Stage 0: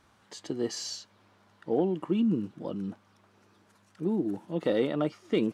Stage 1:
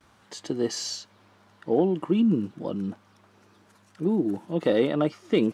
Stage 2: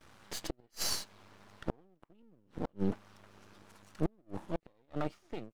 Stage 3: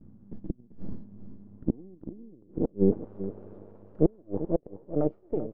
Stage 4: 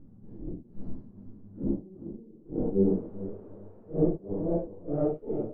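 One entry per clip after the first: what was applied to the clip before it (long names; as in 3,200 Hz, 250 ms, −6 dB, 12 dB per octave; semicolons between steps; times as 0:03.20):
noise gate with hold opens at −55 dBFS; level +4.5 dB
fade-out on the ending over 1.60 s; gate with flip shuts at −19 dBFS, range −41 dB; half-wave rectification; level +3.5 dB
reversed playback; upward compression, threshold −45 dBFS; reversed playback; low-pass filter sweep 220 Hz → 480 Hz, 0:01.08–0:03.16; single-tap delay 389 ms −13 dB; level +7 dB
random phases in long frames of 200 ms; one half of a high-frequency compander decoder only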